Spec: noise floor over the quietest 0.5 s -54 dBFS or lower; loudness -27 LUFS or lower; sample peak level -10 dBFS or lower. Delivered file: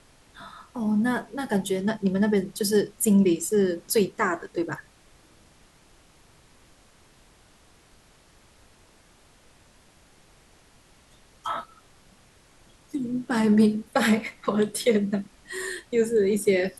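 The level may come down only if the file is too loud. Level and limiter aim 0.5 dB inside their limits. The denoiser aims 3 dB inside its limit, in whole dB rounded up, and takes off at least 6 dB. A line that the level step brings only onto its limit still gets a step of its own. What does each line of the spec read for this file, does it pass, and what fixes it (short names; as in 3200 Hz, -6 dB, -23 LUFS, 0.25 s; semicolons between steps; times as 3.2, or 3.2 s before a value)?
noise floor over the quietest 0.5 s -57 dBFS: OK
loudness -25.0 LUFS: fail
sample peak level -8.0 dBFS: fail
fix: gain -2.5 dB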